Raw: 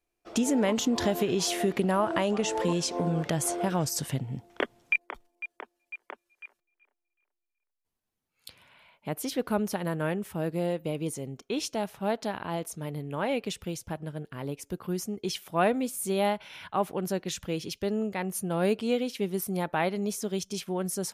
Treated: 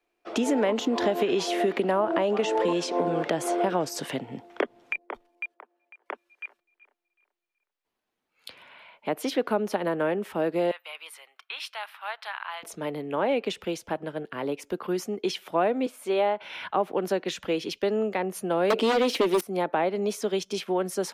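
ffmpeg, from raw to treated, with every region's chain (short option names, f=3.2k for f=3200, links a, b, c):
-filter_complex "[0:a]asettb=1/sr,asplit=3[a][b][c];[a]atrim=end=5.544[d];[b]atrim=start=5.54:end=6.06,asetpts=PTS-STARTPTS,afade=t=in:d=0.004:c=qsin,afade=t=out:st=0.516:d=0.004:c=qsin,acompressor=threshold=-48dB:ratio=12:attack=3.2:release=140:knee=1:detection=peak,bandpass=f=670:t=q:w=0.57[e];[c]atrim=start=6.056[f];[d][e]acrossfade=d=0.004:c1=hsin:c2=qsin[g];[g][f]acrossfade=d=0.004:c1=qsin:c2=hsin,asettb=1/sr,asplit=3[h][i][j];[h]atrim=end=10.714[k];[i]atrim=start=10.71:end=12.63,asetpts=PTS-STARTPTS,afade=t=in:d=0.004:c=qsin,afade=t=out:st=1.916:d=0.004:c=qsin,highpass=f=1.1k:w=0.5412,highpass=f=1.1k:w=1.3066,equalizer=f=6.6k:t=o:w=0.57:g=-14.5[l];[j]atrim=start=12.626[m];[k][l]acrossfade=d=0.004:c1=hsin:c2=qsin[n];[n][m]acrossfade=d=0.004:c1=qsin:c2=hsin,asettb=1/sr,asplit=3[o][p][q];[o]atrim=end=15.864[r];[p]atrim=start=15.86:end=16.41,asetpts=PTS-STARTPTS,afade=t=in:d=0.004:c=qsin,afade=t=out:st=0.546:d=0.004:c=qsin,highpass=150,bass=f=250:g=-12,treble=f=4k:g=-10[s];[q]atrim=start=16.406[t];[r][s]acrossfade=d=0.004:c1=hsin:c2=qsin[u];[u][t]acrossfade=d=0.004:c1=qsin:c2=hsin,asettb=1/sr,asplit=3[v][w][x];[v]atrim=end=18.704[y];[w]atrim=start=18.7:end=19.41,asetpts=PTS-STARTPTS,afade=t=in:d=0.004:c=qsin,afade=t=out:st=0.706:d=0.004:c=qsin,highpass=250,highshelf=f=2.8k:g=7,aeval=exprs='0.178*sin(PI/2*4.47*val(0)/0.178)':c=same[z];[x]atrim=start=19.406[aa];[y][z]acrossfade=d=0.004:c1=hsin:c2=qsin[ab];[ab][aa]acrossfade=d=0.004:c1=qsin:c2=hsin,acrossover=split=240 4100:gain=0.158 1 0.224[ac][ad][ae];[ac][ad][ae]amix=inputs=3:normalize=0,acrossover=split=180|740[af][ag][ah];[af]acompressor=threshold=-57dB:ratio=4[ai];[ag]acompressor=threshold=-31dB:ratio=4[aj];[ah]acompressor=threshold=-40dB:ratio=4[ak];[ai][aj][ak]amix=inputs=3:normalize=0,volume=8.5dB"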